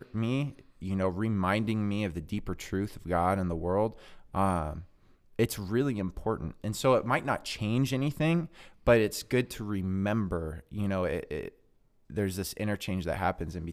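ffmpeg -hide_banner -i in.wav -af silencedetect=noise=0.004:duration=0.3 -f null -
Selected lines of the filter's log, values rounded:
silence_start: 4.86
silence_end: 5.39 | silence_duration: 0.54
silence_start: 11.49
silence_end: 12.10 | silence_duration: 0.61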